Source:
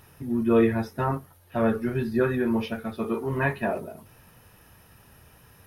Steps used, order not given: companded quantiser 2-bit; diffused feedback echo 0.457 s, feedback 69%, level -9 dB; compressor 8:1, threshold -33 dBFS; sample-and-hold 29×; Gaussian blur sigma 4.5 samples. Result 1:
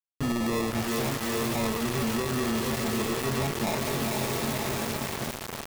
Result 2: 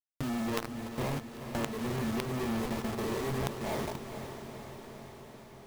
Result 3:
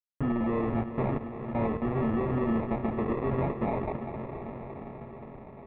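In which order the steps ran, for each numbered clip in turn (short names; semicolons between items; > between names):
Gaussian blur > sample-and-hold > diffused feedback echo > compressor > companded quantiser; sample-and-hold > Gaussian blur > companded quantiser > compressor > diffused feedback echo; compressor > companded quantiser > diffused feedback echo > sample-and-hold > Gaussian blur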